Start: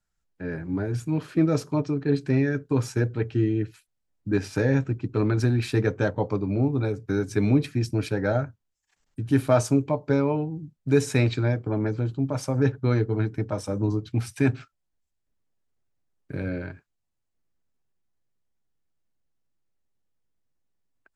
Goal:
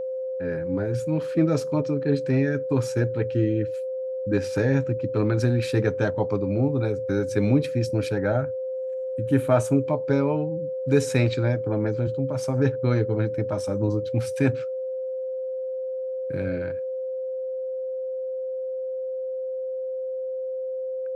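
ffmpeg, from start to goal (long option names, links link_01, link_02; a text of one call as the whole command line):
ffmpeg -i in.wav -filter_complex "[0:a]asettb=1/sr,asplit=3[link_01][link_02][link_03];[link_01]atrim=end=8.184[link_04];[link_02]atrim=start=8.18:end=9.88,asetpts=PTS-STARTPTS,afade=type=in:duration=0.004:curve=qsin,afade=type=out:start_time=1.696:duration=0.004:curve=qsin,equalizer=frequency=5000:width=2:gain=-12[link_05];[link_03]atrim=start=9.876[link_06];[link_04][link_05]acrossfade=duration=0.004:curve1=hsin:curve2=qsin[link_07];[link_07][link_06]acrossfade=duration=0.004:curve1=qsin:curve2=hsin,asettb=1/sr,asplit=3[link_08][link_09][link_10];[link_08]atrim=end=12.074[link_11];[link_09]atrim=start=12.07:end=12.48,asetpts=PTS-STARTPTS,afade=type=in:duration=0.004:curve=qsin,afade=type=out:start_time=0.406:duration=0.004:curve=qsin,acrossover=split=180[link_12][link_13];[link_13]acompressor=threshold=-29dB:ratio=4[link_14];[link_12][link_14]amix=inputs=2:normalize=0[link_15];[link_10]atrim=start=12.476[link_16];[link_11][link_15]acrossfade=duration=0.004:curve1=hsin:curve2=qsin[link_17];[link_17][link_16]acrossfade=duration=0.004:curve1=qsin:curve2=hsin,aeval=exprs='val(0)+0.0447*sin(2*PI*520*n/s)':channel_layout=same" out.wav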